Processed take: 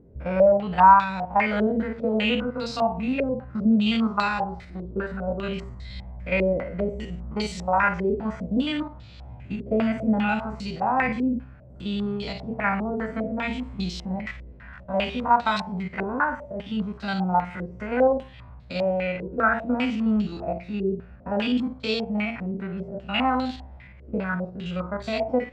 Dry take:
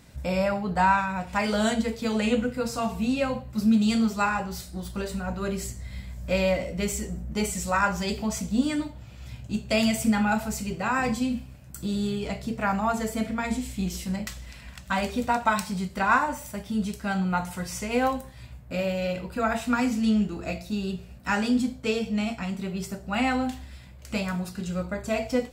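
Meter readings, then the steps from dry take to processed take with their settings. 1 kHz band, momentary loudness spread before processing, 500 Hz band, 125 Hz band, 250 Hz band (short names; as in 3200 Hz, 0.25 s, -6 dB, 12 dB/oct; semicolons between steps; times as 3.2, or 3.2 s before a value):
+4.5 dB, 11 LU, +4.0 dB, 0.0 dB, +0.5 dB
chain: stepped spectrum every 50 ms; stepped low-pass 5 Hz 420–4100 Hz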